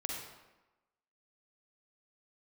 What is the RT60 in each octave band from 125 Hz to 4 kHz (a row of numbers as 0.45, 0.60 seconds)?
0.90, 1.1, 1.0, 1.1, 0.95, 0.75 seconds